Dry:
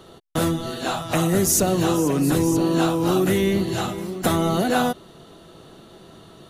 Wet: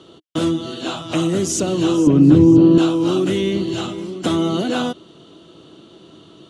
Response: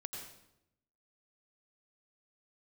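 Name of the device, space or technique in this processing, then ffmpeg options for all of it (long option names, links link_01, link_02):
car door speaker: -filter_complex "[0:a]highpass=87,equalizer=frequency=310:width_type=q:width=4:gain=9,equalizer=frequency=770:width_type=q:width=4:gain=-5,equalizer=frequency=1800:width_type=q:width=4:gain=-6,equalizer=frequency=3100:width_type=q:width=4:gain=8,lowpass=frequency=8200:width=0.5412,lowpass=frequency=8200:width=1.3066,asettb=1/sr,asplit=3[link_01][link_02][link_03];[link_01]atrim=end=2.074[link_04];[link_02]atrim=start=2.07:end=2.78,asetpts=PTS-STARTPTS,afade=type=in:duration=0.004:curve=qsin,afade=type=out:start_time=0.706:duration=0.004:curve=qsin,aemphasis=mode=reproduction:type=riaa[link_05];[link_03]atrim=start=2.776[link_06];[link_04][link_05]acrossfade=duration=0.004:curve1=hsin:curve2=qsin[link_07];[link_07][link_06]acrossfade=duration=0.004:curve1=qsin:curve2=hsin,volume=-1dB"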